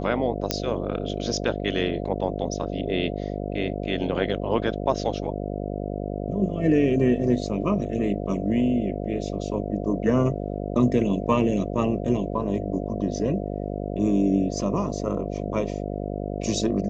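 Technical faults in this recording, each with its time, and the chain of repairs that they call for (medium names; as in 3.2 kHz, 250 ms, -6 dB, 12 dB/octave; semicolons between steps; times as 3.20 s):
buzz 50 Hz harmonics 14 -30 dBFS
0.51 s: pop -6 dBFS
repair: de-click; de-hum 50 Hz, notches 14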